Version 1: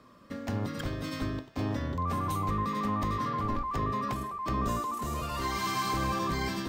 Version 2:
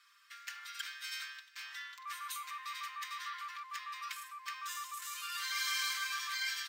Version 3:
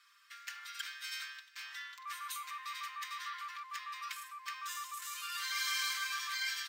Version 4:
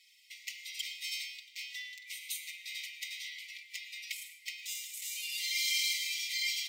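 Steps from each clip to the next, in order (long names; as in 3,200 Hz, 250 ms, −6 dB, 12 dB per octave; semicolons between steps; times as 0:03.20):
Butterworth high-pass 1,500 Hz 36 dB per octave; comb filter 5.1 ms, depth 72%
no processing that can be heard
linear-phase brick-wall high-pass 1,900 Hz; convolution reverb RT60 0.55 s, pre-delay 70 ms, DRR 13.5 dB; level +5 dB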